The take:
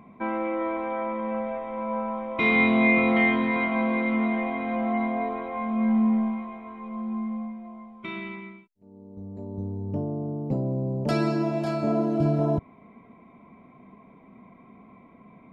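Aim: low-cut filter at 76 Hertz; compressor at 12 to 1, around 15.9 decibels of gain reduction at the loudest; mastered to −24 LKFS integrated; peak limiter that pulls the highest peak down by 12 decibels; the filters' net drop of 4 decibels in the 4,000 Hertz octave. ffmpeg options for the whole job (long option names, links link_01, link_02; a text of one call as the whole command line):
ffmpeg -i in.wav -af "highpass=76,equalizer=frequency=4000:width_type=o:gain=-5,acompressor=threshold=-34dB:ratio=12,volume=19dB,alimiter=limit=-15.5dB:level=0:latency=1" out.wav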